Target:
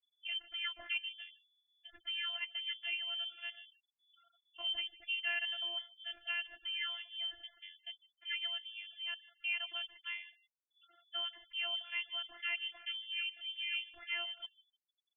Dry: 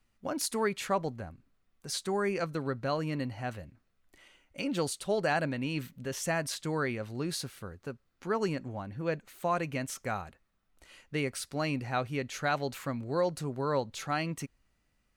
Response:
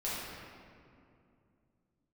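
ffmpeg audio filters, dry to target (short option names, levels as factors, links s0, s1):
-filter_complex "[0:a]lowpass=f=2900:t=q:w=0.5098,lowpass=f=2900:t=q:w=0.6013,lowpass=f=2900:t=q:w=0.9,lowpass=f=2900:t=q:w=2.563,afreqshift=-3400,afftfilt=real='hypot(re,im)*cos(PI*b)':imag='0':win_size=512:overlap=0.75,equalizer=f=160:t=o:w=0.67:g=5,equalizer=f=400:t=o:w=0.67:g=-8,equalizer=f=1000:t=o:w=0.67:g=-12,equalizer=f=2500:t=o:w=0.67:g=-5,asplit=2[s0][s1];[s1]aecho=0:1:152|304:0.0891|0.0258[s2];[s0][s2]amix=inputs=2:normalize=0,afftfilt=real='re*gte(hypot(re,im),0.00158)':imag='im*gte(hypot(re,im),0.00158)':win_size=1024:overlap=0.75"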